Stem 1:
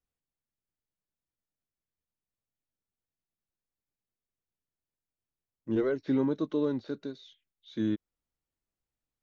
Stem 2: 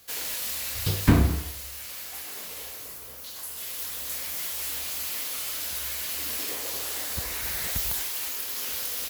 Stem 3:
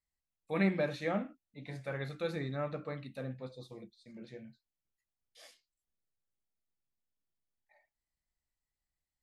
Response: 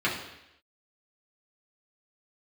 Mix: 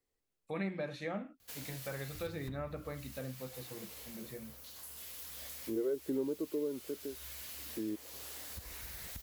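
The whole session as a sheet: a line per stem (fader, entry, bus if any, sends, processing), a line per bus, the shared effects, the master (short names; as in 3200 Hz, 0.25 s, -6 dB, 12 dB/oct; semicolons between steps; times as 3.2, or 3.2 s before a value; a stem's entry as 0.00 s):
-2.0 dB, 0.00 s, no send, bell 410 Hz +15 dB 1.2 oct; auto duck -9 dB, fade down 1.70 s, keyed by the third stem
-11.5 dB, 1.40 s, no send, low shelf 190 Hz +8.5 dB; compressor 6:1, threshold -30 dBFS, peak gain reduction 21.5 dB
+2.5 dB, 0.00 s, no send, dry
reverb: off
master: compressor 2:1, threshold -42 dBFS, peak gain reduction 13 dB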